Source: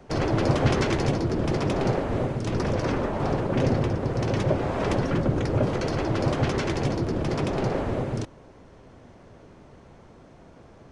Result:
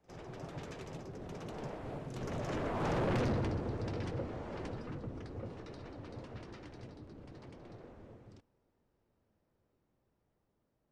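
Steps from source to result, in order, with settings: Doppler pass-by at 3.09, 43 m/s, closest 7.3 m; soft clip -31 dBFS, distortion -5 dB; on a send: reverse echo 56 ms -19.5 dB; on the sum: gain +1.5 dB

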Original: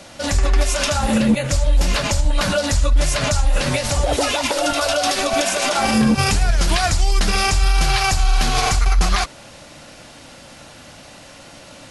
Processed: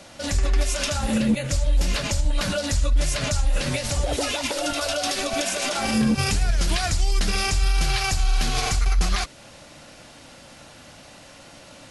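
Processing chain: dynamic EQ 940 Hz, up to -5 dB, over -35 dBFS, Q 1; gain -4.5 dB

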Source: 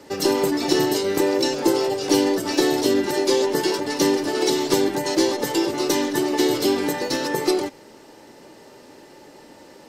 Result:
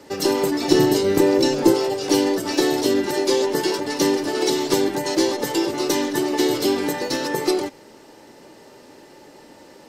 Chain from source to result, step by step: 0.7–1.74 low shelf 320 Hz +9 dB

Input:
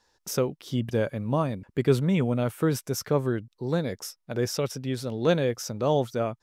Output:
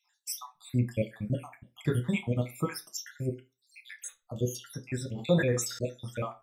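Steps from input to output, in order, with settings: random spectral dropouts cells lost 73%; reverb RT60 0.25 s, pre-delay 3 ms, DRR 4 dB; 5.09–5.83 sustainer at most 67 dB/s

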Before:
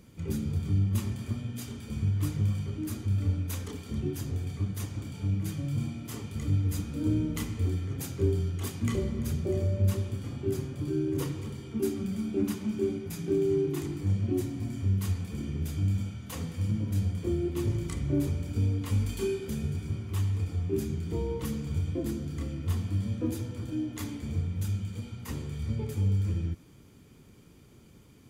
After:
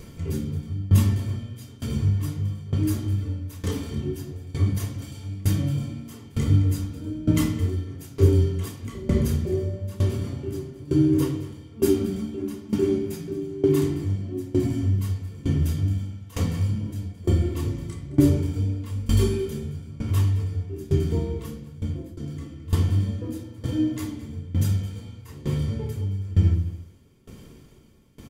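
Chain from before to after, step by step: 5–5.41 high shelf 2100 Hz +9.5 dB; 21.36–22.17 fade out; outdoor echo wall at 37 m, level -11 dB; reverb RT60 0.70 s, pre-delay 3 ms, DRR -0.5 dB; upward compressor, threshold -43 dBFS; dB-ramp tremolo decaying 1.1 Hz, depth 20 dB; gain +6.5 dB

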